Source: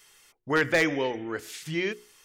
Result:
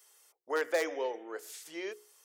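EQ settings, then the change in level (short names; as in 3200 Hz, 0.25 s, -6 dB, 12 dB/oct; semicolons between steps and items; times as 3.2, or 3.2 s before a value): HPF 460 Hz 24 dB/oct; bell 2400 Hz -13 dB 2.4 oct; 0.0 dB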